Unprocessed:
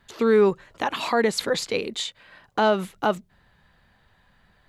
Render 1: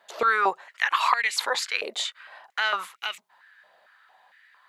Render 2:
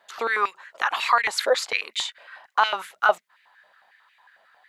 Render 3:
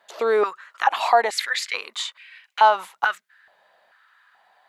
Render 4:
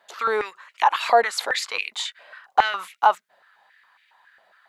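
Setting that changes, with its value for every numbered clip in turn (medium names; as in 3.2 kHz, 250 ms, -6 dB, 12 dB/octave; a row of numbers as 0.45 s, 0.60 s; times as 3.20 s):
step-sequenced high-pass, rate: 4.4 Hz, 11 Hz, 2.3 Hz, 7.3 Hz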